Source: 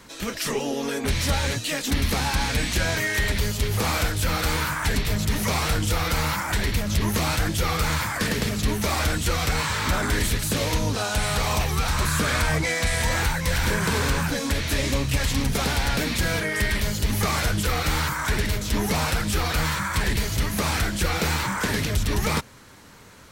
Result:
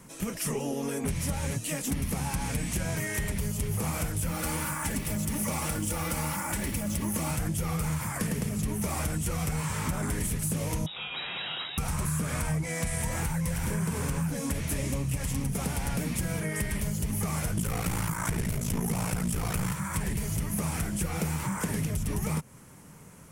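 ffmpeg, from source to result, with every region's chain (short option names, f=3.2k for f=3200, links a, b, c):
-filter_complex "[0:a]asettb=1/sr,asplit=3[a][b][c];[a]atrim=end=4.314[d];[b]atrim=start=4.31:end=7.31,asetpts=PTS-STARTPTS,afade=t=in:d=0.004:c=qsin,afade=t=out:st=2.996:d=0.004:c=qsin,highpass=f=110:p=1,acrusher=bits=5:mix=0:aa=0.5,aecho=1:1:3.5:0.48,atrim=end_sample=132300[e];[c]atrim=start=7.306[f];[d][e]acrossfade=d=0.004:c1=hsin:c2=qsin[g];[g][f]acrossfade=d=0.004:c1=qsin:c2=hsin,asettb=1/sr,asplit=3[h][i][j];[h]atrim=end=10.864[k];[i]atrim=start=10.86:end=11.78,asetpts=PTS-STARTPTS,afade=t=in:d=0.004:c=qsin,afade=t=out:st=0.916:d=0.004:c=qsin,lowpass=f=3.3k:t=q:w=0.5098,lowpass=f=3.3k:t=q:w=0.6013,lowpass=f=3.3k:t=q:w=0.9,lowpass=f=3.3k:t=q:w=2.563,afreqshift=-3900,highpass=f=110:p=1[l];[j]atrim=start=11.776[m];[k][l]acrossfade=d=0.004:c1=hsin:c2=qsin[n];[n][m]acrossfade=d=0.004:c1=qsin:c2=hsin,asettb=1/sr,asplit=3[o][p][q];[o]atrim=end=17.574[r];[p]atrim=start=17.57:end=19.73,asetpts=PTS-STARTPTS,afade=t=in:d=0.004:c=qsin,afade=t=out:st=2.156:d=0.004:c=qsin,aeval=exprs='val(0)*sin(2*PI*28*n/s)':c=same,aeval=exprs='0.237*sin(PI/2*1.78*val(0)/0.237)':c=same[s];[q]atrim=start=19.726[t];[r][s]acrossfade=d=0.004:c1=hsin:c2=qsin[u];[u][t]acrossfade=d=0.004:c1=qsin:c2=hsin,equalizer=f=160:t=o:w=0.67:g=11,equalizer=f=1.6k:t=o:w=0.67:g=-5,equalizer=f=4k:t=o:w=0.67:g=-12,equalizer=f=10k:t=o:w=0.67:g=9,acompressor=threshold=-22dB:ratio=6,volume=-4.5dB"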